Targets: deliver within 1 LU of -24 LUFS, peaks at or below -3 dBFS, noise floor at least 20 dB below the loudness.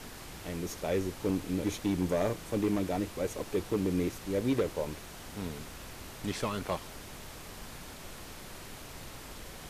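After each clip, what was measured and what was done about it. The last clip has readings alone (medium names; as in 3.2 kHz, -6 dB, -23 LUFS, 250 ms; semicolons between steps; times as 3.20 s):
clipped samples 0.7%; clipping level -22.5 dBFS; noise floor -47 dBFS; noise floor target -54 dBFS; loudness -33.5 LUFS; peak level -22.5 dBFS; loudness target -24.0 LUFS
-> clip repair -22.5 dBFS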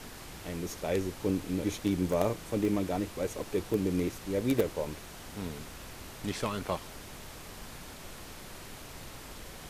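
clipped samples 0.0%; noise floor -47 dBFS; noise floor target -53 dBFS
-> noise print and reduce 6 dB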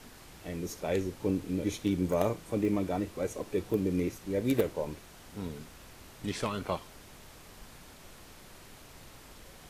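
noise floor -52 dBFS; noise floor target -53 dBFS
-> noise print and reduce 6 dB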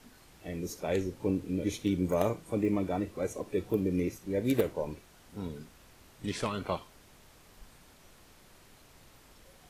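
noise floor -58 dBFS; loudness -33.0 LUFS; peak level -13.5 dBFS; loudness target -24.0 LUFS
-> trim +9 dB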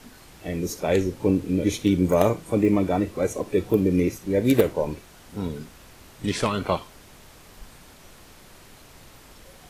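loudness -24.0 LUFS; peak level -4.5 dBFS; noise floor -49 dBFS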